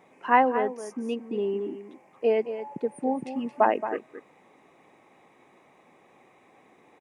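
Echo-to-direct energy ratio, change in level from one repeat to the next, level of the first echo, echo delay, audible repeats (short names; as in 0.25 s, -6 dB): -11.0 dB, no steady repeat, -11.0 dB, 0.223 s, 1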